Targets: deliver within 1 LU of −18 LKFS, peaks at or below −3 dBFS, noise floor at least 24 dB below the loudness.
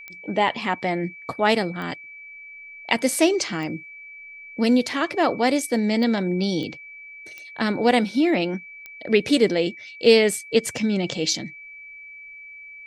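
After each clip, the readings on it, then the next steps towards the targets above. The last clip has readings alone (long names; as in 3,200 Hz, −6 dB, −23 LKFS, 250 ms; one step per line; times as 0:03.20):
number of clicks 7; interfering tone 2,300 Hz; level of the tone −39 dBFS; integrated loudness −22.0 LKFS; sample peak −3.0 dBFS; target loudness −18.0 LKFS
→ click removal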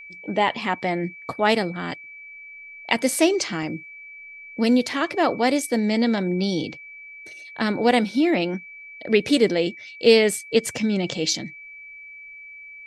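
number of clicks 0; interfering tone 2,300 Hz; level of the tone −39 dBFS
→ notch filter 2,300 Hz, Q 30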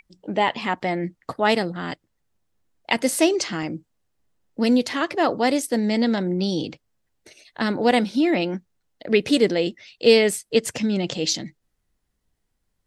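interfering tone none found; integrated loudness −22.0 LKFS; sample peak −3.0 dBFS; target loudness −18.0 LKFS
→ level +4 dB
brickwall limiter −3 dBFS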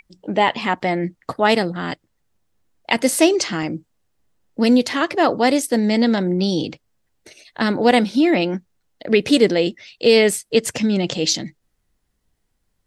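integrated loudness −18.5 LKFS; sample peak −3.0 dBFS; background noise floor −71 dBFS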